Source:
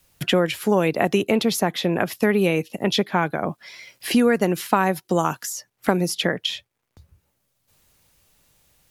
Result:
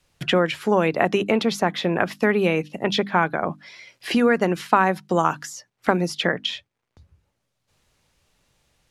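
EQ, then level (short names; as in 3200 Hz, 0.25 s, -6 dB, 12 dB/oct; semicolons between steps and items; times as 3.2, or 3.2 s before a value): notches 50/100/150/200/250/300 Hz; dynamic EQ 1300 Hz, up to +5 dB, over -36 dBFS, Q 0.84; air absorption 60 m; -1.0 dB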